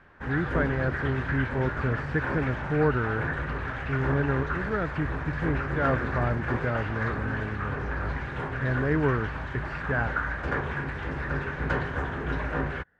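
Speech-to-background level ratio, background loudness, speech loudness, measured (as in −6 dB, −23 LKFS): 1.5 dB, −31.5 LKFS, −30.0 LKFS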